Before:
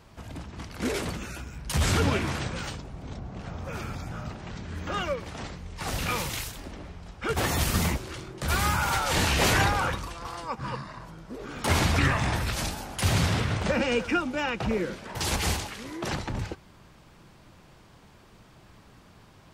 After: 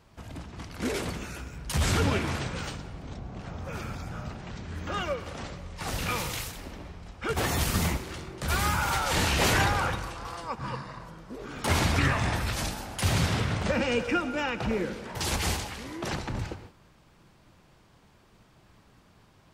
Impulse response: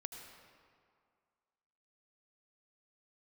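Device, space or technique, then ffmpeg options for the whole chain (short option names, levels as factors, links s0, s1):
keyed gated reverb: -filter_complex "[0:a]asplit=3[s0][s1][s2];[1:a]atrim=start_sample=2205[s3];[s1][s3]afir=irnorm=-1:irlink=0[s4];[s2]apad=whole_len=861571[s5];[s4][s5]sidechaingate=range=0.0224:threshold=0.00355:ratio=16:detection=peak,volume=1[s6];[s0][s6]amix=inputs=2:normalize=0,volume=0.531"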